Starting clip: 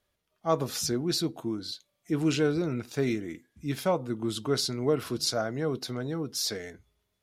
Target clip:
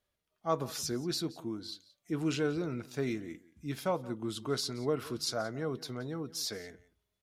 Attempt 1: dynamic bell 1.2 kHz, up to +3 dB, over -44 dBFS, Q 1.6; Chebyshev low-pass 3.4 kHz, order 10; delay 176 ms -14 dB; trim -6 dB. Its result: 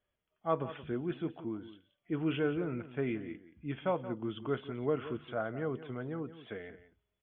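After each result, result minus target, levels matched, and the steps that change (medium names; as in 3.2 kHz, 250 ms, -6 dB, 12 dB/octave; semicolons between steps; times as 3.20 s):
4 kHz band -11.5 dB; echo-to-direct +6 dB
remove: Chebyshev low-pass 3.4 kHz, order 10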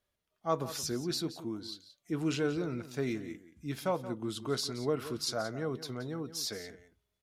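echo-to-direct +6 dB
change: delay 176 ms -20 dB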